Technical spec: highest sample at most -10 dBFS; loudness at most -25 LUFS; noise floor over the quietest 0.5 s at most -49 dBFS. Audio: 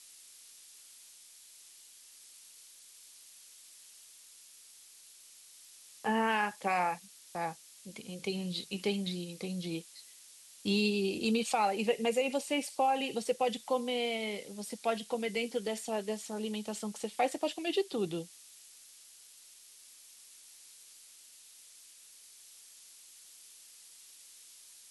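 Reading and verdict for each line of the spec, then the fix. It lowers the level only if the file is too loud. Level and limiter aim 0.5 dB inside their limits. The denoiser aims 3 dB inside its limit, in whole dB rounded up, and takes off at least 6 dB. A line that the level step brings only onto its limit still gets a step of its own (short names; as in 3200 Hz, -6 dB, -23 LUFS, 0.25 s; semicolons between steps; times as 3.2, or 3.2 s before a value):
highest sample -18.0 dBFS: OK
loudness -33.5 LUFS: OK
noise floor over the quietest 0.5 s -56 dBFS: OK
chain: none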